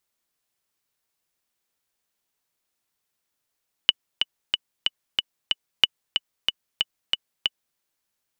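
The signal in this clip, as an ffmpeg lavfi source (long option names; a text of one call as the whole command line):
ffmpeg -f lavfi -i "aevalsrc='pow(10,(-1-6.5*gte(mod(t,6*60/185),60/185))/20)*sin(2*PI*2960*mod(t,60/185))*exp(-6.91*mod(t,60/185)/0.03)':duration=3.89:sample_rate=44100" out.wav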